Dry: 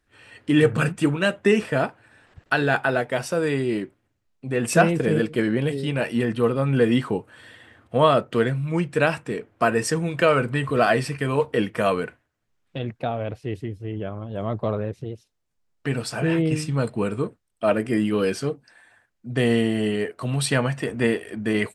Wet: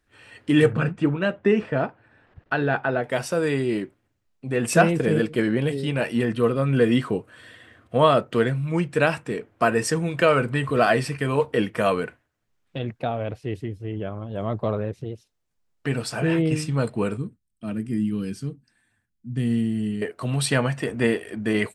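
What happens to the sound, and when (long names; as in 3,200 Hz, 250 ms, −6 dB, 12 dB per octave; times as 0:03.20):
0:00.73–0:03.04: head-to-tape spacing loss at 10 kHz 24 dB
0:06.34–0:07.95: Butterworth band-reject 860 Hz, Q 7
0:17.17–0:20.02: drawn EQ curve 230 Hz 0 dB, 570 Hz −21 dB, 1,700 Hz −15 dB, 9,400 Hz −7 dB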